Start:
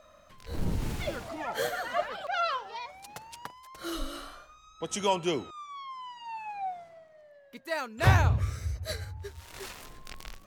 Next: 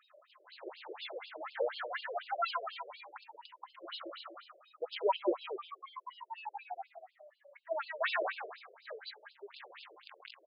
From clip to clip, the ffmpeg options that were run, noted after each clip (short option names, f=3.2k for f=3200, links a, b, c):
-filter_complex "[0:a]asplit=2[a][b];[b]aecho=0:1:182|364|546:0.501|0.11|0.0243[c];[a][c]amix=inputs=2:normalize=0,afftfilt=real='re*between(b*sr/1024,440*pow(3700/440,0.5+0.5*sin(2*PI*4.1*pts/sr))/1.41,440*pow(3700/440,0.5+0.5*sin(2*PI*4.1*pts/sr))*1.41)':imag='im*between(b*sr/1024,440*pow(3700/440,0.5+0.5*sin(2*PI*4.1*pts/sr))/1.41,440*pow(3700/440,0.5+0.5*sin(2*PI*4.1*pts/sr))*1.41)':win_size=1024:overlap=0.75"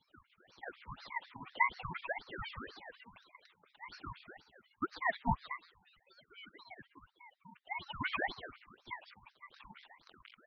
-filter_complex "[0:a]asplit=3[a][b][c];[a]bandpass=f=530:t=q:w=8,volume=0dB[d];[b]bandpass=f=1.84k:t=q:w=8,volume=-6dB[e];[c]bandpass=f=2.48k:t=q:w=8,volume=-9dB[f];[d][e][f]amix=inputs=3:normalize=0,aeval=exprs='val(0)*sin(2*PI*960*n/s+960*0.65/1.8*sin(2*PI*1.8*n/s))':c=same,volume=9.5dB"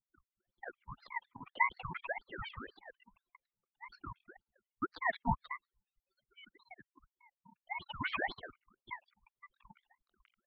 -af "anlmdn=0.01"